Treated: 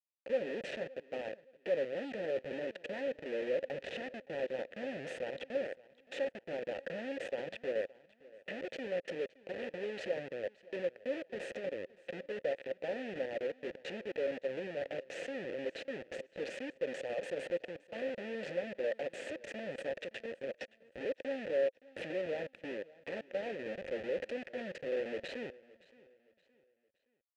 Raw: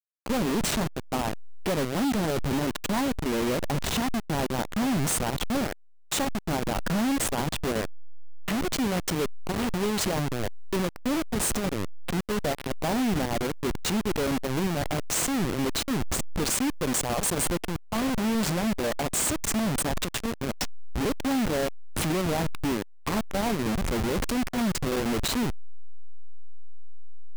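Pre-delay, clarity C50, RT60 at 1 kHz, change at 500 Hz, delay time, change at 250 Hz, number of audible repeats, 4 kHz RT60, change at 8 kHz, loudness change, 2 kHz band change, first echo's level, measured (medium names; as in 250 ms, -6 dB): no reverb, no reverb, no reverb, -4.5 dB, 569 ms, -19.0 dB, 2, no reverb, under -30 dB, -11.5 dB, -9.5 dB, -21.5 dB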